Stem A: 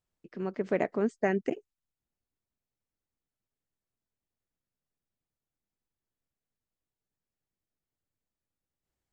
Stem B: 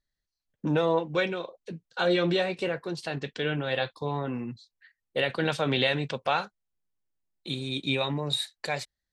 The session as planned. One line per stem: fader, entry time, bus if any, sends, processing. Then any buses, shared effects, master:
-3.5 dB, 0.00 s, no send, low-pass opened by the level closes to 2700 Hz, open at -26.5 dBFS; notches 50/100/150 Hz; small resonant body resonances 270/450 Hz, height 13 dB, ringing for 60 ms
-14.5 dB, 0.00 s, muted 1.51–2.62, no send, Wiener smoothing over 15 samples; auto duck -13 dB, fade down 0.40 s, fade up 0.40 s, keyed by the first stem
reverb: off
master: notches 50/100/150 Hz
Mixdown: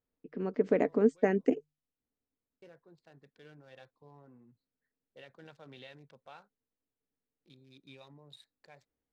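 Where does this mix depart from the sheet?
stem B -14.5 dB -> -25.5 dB; master: missing notches 50/100/150 Hz

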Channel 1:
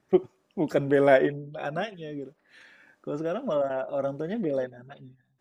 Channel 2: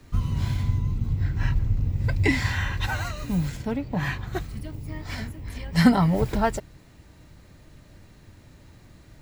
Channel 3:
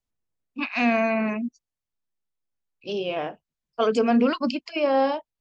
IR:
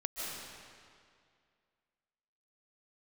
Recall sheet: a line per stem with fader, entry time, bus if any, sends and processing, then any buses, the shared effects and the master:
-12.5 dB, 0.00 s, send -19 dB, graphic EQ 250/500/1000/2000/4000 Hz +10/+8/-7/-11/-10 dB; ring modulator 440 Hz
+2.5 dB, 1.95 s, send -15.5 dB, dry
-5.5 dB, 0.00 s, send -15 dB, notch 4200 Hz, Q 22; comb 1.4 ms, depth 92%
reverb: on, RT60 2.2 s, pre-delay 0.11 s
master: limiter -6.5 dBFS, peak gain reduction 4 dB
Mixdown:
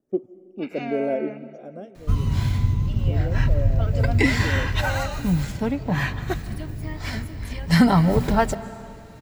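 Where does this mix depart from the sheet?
stem 1: missing ring modulator 440 Hz; stem 3 -5.5 dB -> -15.0 dB

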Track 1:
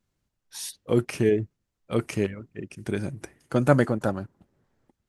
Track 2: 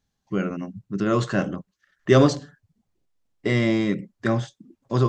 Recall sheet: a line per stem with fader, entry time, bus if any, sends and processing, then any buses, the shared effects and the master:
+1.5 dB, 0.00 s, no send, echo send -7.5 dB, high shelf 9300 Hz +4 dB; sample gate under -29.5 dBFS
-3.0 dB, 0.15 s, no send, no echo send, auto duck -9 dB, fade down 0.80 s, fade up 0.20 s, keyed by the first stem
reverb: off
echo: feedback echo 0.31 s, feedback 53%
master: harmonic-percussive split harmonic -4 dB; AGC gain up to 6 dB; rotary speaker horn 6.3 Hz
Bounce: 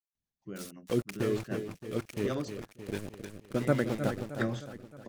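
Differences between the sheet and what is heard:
stem 1 +1.5 dB -> -10.5 dB; stem 2 -3.0 dB -> -11.0 dB

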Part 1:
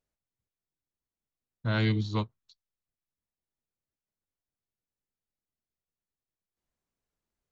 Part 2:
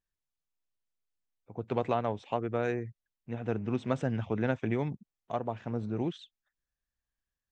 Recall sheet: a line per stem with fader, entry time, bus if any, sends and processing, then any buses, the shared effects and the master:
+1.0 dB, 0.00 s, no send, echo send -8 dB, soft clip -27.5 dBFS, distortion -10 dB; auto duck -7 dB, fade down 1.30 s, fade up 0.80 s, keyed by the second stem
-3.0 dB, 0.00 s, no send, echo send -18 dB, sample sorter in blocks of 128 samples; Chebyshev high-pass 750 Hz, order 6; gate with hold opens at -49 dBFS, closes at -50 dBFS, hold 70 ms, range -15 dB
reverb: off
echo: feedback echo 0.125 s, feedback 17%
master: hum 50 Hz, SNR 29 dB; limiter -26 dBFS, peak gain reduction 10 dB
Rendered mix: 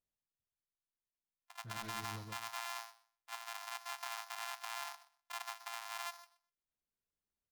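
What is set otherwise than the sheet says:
stem 1 +1.0 dB -> -10.0 dB; master: missing hum 50 Hz, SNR 29 dB

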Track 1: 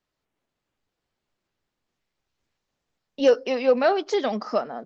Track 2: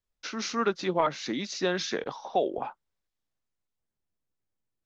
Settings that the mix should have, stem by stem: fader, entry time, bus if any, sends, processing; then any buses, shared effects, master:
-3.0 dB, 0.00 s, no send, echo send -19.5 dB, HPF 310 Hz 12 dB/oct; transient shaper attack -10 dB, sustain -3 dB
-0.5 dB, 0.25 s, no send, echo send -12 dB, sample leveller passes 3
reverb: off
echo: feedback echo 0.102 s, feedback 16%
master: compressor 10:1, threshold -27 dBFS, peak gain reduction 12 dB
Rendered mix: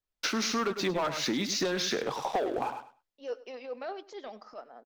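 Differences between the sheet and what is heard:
stem 1 -3.0 dB -> -14.5 dB; stem 2: entry 0.25 s -> 0.00 s

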